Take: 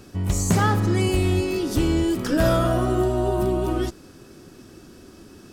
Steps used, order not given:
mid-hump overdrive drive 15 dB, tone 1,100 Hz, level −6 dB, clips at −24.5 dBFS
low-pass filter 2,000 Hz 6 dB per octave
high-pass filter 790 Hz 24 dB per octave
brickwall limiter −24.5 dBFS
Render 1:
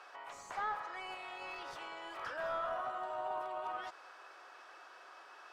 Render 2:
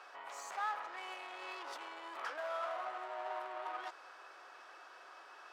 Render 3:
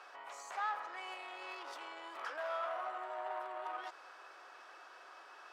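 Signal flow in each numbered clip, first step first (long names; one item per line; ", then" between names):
brickwall limiter, then high-pass filter, then mid-hump overdrive, then low-pass filter
low-pass filter, then mid-hump overdrive, then brickwall limiter, then high-pass filter
brickwall limiter, then low-pass filter, then mid-hump overdrive, then high-pass filter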